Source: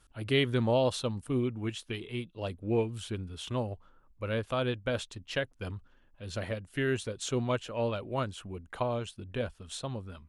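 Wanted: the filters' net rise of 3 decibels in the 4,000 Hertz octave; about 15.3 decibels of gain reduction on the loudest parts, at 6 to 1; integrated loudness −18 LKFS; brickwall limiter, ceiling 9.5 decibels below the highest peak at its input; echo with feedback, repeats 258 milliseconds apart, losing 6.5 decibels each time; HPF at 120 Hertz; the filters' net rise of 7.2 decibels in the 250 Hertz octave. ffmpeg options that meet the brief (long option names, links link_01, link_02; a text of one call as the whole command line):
ffmpeg -i in.wav -af "highpass=120,equalizer=frequency=250:width_type=o:gain=8.5,equalizer=frequency=4000:width_type=o:gain=4,acompressor=threshold=-36dB:ratio=6,alimiter=level_in=6.5dB:limit=-24dB:level=0:latency=1,volume=-6.5dB,aecho=1:1:258|516|774|1032|1290|1548:0.473|0.222|0.105|0.0491|0.0231|0.0109,volume=23.5dB" out.wav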